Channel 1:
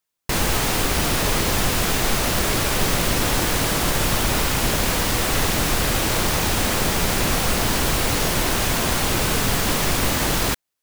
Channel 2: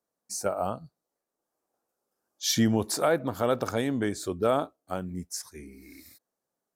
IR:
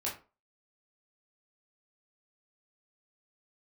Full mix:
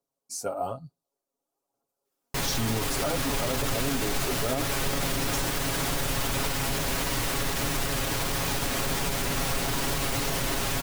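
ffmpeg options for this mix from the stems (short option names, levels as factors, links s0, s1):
-filter_complex "[0:a]adelay=2050,volume=0.422[s0];[1:a]equalizer=f=1800:t=o:w=0.54:g=-12.5,aphaser=in_gain=1:out_gain=1:delay=4.4:decay=0.41:speed=1.1:type=triangular,volume=0.708[s1];[s0][s1]amix=inputs=2:normalize=0,aecho=1:1:7.3:0.66,alimiter=limit=0.126:level=0:latency=1:release=31"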